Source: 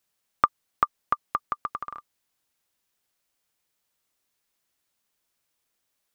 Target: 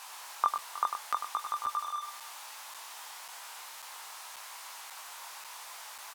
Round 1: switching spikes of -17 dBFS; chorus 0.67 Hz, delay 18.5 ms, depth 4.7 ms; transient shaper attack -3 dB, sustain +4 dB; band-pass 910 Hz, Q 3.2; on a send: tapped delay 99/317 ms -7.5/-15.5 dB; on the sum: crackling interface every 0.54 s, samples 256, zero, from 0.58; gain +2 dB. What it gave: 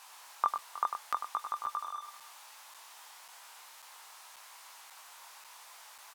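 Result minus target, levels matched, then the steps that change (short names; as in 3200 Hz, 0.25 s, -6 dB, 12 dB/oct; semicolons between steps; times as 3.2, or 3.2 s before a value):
switching spikes: distortion -7 dB
change: switching spikes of -10 dBFS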